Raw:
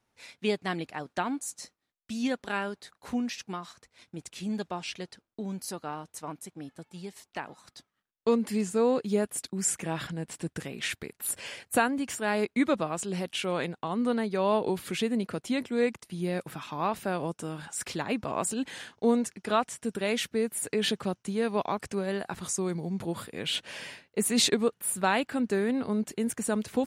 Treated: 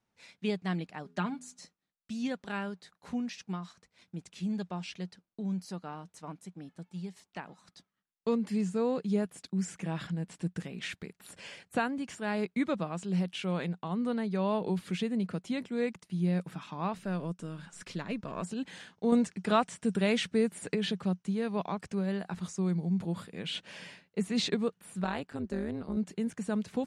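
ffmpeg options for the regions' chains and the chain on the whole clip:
-filter_complex "[0:a]asettb=1/sr,asplit=3[a][b][c];[a]atrim=end=1.044[d];[b]atrim=start=1.04:end=1.58,asetpts=PTS-STARTPTS,afade=t=in:d=0.004:c=qsin,afade=t=out:st=0.536:d=0.004:c=qsin,aecho=1:1:4.9:0.71,atrim=end_sample=23814,bandreject=f=83.62:t=h:w=4,bandreject=f=167.24:t=h:w=4,bandreject=f=250.86:t=h:w=4,bandreject=f=334.48:t=h:w=4,bandreject=f=418.1:t=h:w=4[e];[c]atrim=start=1.576[f];[d][e]acrossfade=d=0.004:c1=hsin:c2=qsin[g];[g][f]acrossfade=d=0.004:c1=qsin:c2=hsin,asettb=1/sr,asplit=3[h][i][j];[h]atrim=end=16.964[k];[i]atrim=start=16.96:end=18.43,asetpts=PTS-STARTPTS,afade=t=in:d=0.004:c=qsin,afade=t=out:st=1.466:d=0.004:c=qsin,aeval=exprs='if(lt(val(0),0),0.708*val(0),val(0))':c=same,equalizer=f=800:t=o:w=0.22:g=-9.5[l];[j]atrim=start=18.426[m];[k][l]acrossfade=d=0.004:c1=hsin:c2=qsin[n];[n][m]acrossfade=d=0.004:c1=qsin:c2=hsin,asettb=1/sr,asplit=3[o][p][q];[o]atrim=end=19.124[r];[p]atrim=start=19.12:end=20.75,asetpts=PTS-STARTPTS,afade=t=in:d=0.004:c=qsin,afade=t=out:st=1.626:d=0.004:c=qsin,equalizer=f=8.5k:w=2.6:g=7.5,acontrast=40[s];[q]atrim=start=20.746[t];[r][s]acrossfade=d=0.004:c1=hsin:c2=qsin[u];[u][t]acrossfade=d=0.004:c1=qsin:c2=hsin,asettb=1/sr,asplit=3[v][w][x];[v]atrim=end=25.044[y];[w]atrim=start=25.04:end=25.97,asetpts=PTS-STARTPTS,afade=t=in:d=0.004:c=qsin,afade=t=out:st=0.926:d=0.004:c=qsin,equalizer=f=2.4k:w=1.5:g=-3,tremolo=f=150:d=0.889[z];[x]atrim=start=25.966[aa];[y][z]acrossfade=d=0.004:c1=hsin:c2=qsin[ab];[ab][aa]acrossfade=d=0.004:c1=qsin:c2=hsin,equalizer=f=180:w=3.6:g=11.5,acrossover=split=5700[ac][ad];[ad]acompressor=threshold=-42dB:ratio=4:attack=1:release=60[ae];[ac][ae]amix=inputs=2:normalize=0,lowpass=8.6k,volume=-6dB"

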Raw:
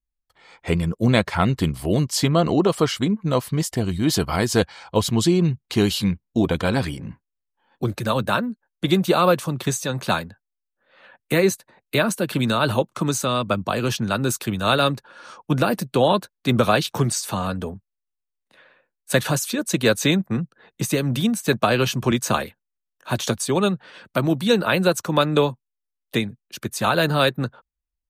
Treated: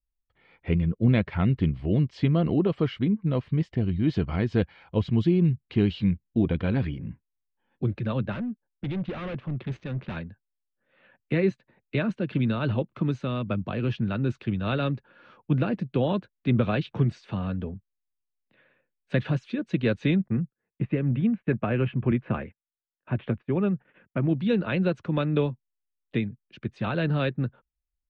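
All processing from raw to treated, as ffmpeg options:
-filter_complex "[0:a]asettb=1/sr,asplit=3[a][b][c];[a]atrim=end=8.324[d];[b]atrim=start=8.32:end=10.17,asetpts=PTS-STARTPTS,afade=t=in:d=0.004:c=qsin,afade=t=out:st=1.846:d=0.004:c=qsin,adynamicsmooth=sensitivity=5.5:basefreq=1.3k,volume=24dB,asoftclip=hard,volume=-24dB[e];[c]atrim=start=10.166[f];[d][e]acrossfade=d=0.004:c1=hsin:c2=qsin[g];[g][f]acrossfade=d=0.004:c1=qsin:c2=hsin,asettb=1/sr,asplit=3[h][i][j];[h]atrim=end=20.284[k];[i]atrim=start=20.28:end=24.29,asetpts=PTS-STARTPTS,afade=t=in:d=0.004:c=qsin,afade=t=out:st=4.006:d=0.004:c=qsin,lowpass=f=2.5k:w=0.5412,lowpass=f=2.5k:w=1.3066,agate=range=-22dB:threshold=-46dB:ratio=16:release=100:detection=peak[l];[j]atrim=start=24.286[m];[k][l]acrossfade=d=0.004:c1=hsin:c2=qsin[n];[n][m]acrossfade=d=0.004:c1=qsin:c2=hsin,lowpass=f=2.6k:w=0.5412,lowpass=f=2.6k:w=1.3066,equalizer=f=1k:t=o:w=2.4:g=-14"

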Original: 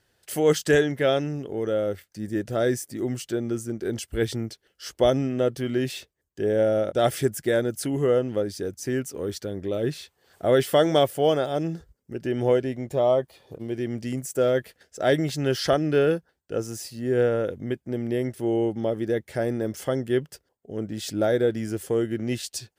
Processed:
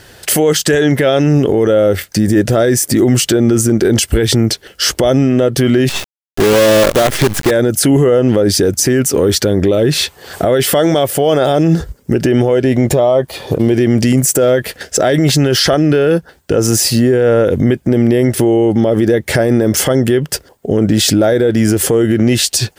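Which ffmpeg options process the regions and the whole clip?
-filter_complex "[0:a]asettb=1/sr,asplit=3[a][b][c];[a]atrim=end=5.894[d];[b]atrim=start=5.89:end=7.51,asetpts=PTS-STARTPTS,afade=t=in:d=0.004:c=qsin,afade=t=out:st=1.616:d=0.004:c=qsin,lowpass=f=2.6k:p=1,acompressor=threshold=-25dB:ratio=16:attack=3.2:release=140:knee=1:detection=peak,acrusher=bits=6:dc=4:mix=0:aa=0.000001[e];[c]atrim=start=7.506[f];[d][e]acrossfade=d=0.004:c1=hsin:c2=qsin[g];[g][f]acrossfade=d=0.004:c1=qsin:c2=hsin,acompressor=threshold=-30dB:ratio=4,alimiter=level_in=31dB:limit=-1dB:release=50:level=0:latency=1,volume=-2.5dB"

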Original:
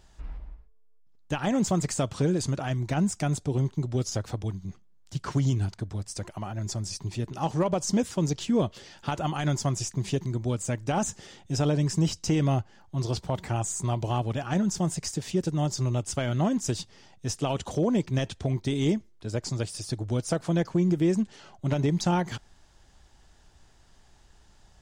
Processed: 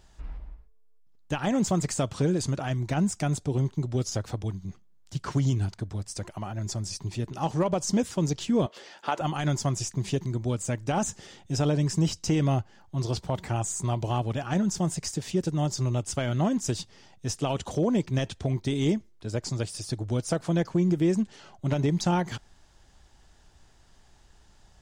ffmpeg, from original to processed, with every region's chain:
-filter_complex "[0:a]asettb=1/sr,asplit=3[a][b][c];[a]atrim=end=8.664[d];[b]atrim=start=8.66:end=9.21,asetpts=PTS-STARTPTS,afade=t=in:d=0.004:c=qsin,afade=t=out:st=0.546:d=0.004:c=qsin,highpass=450,highshelf=f=2.8k:g=-9,acontrast=36[e];[c]atrim=start=9.206[f];[d][e]acrossfade=d=0.004:c1=hsin:c2=qsin[g];[g][f]acrossfade=d=0.004:c1=qsin:c2=hsin"

